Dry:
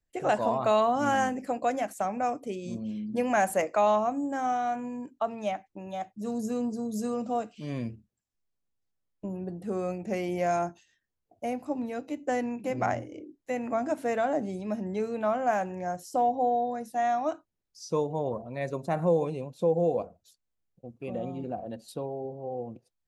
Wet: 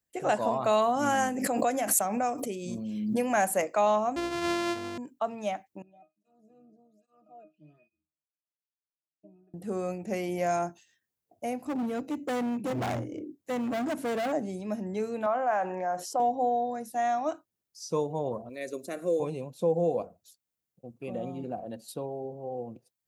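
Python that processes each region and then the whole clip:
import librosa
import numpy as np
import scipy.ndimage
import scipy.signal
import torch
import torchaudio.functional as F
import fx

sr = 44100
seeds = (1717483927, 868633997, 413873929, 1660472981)

y = fx.chain(x, sr, fx.high_shelf(hz=9000.0, db=5.0),
    fx.pre_swell(db_per_s=34.0), at=(0.73, 3.25))
y = fx.chain(y, sr, fx.sample_sort(block=128),
    fx.lowpass(hz=5100.0, slope=12), at=(4.16, 4.98))
y = fx.chain(y, sr, fx.octave_resonator(note='D#', decay_s=0.19),
    fx.flanger_cancel(hz=1.2, depth_ms=1.1), at=(5.82, 9.54))
y = fx.chain(y, sr, fx.highpass(hz=52.0, slope=24),
    fx.low_shelf(hz=390.0, db=10.0),
    fx.clip_hard(threshold_db=-27.0), at=(11.65, 14.32))
y = fx.chain(y, sr, fx.bandpass_q(hz=990.0, q=0.85),
    fx.env_flatten(amount_pct=50), at=(15.26, 16.2))
y = fx.chain(y, sr, fx.high_shelf(hz=5500.0, db=6.0),
    fx.fixed_phaser(hz=360.0, stages=4), at=(18.49, 19.2))
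y = scipy.signal.sosfilt(scipy.signal.butter(2, 96.0, 'highpass', fs=sr, output='sos'), y)
y = fx.high_shelf(y, sr, hz=8700.0, db=11.0)
y = y * librosa.db_to_amplitude(-1.0)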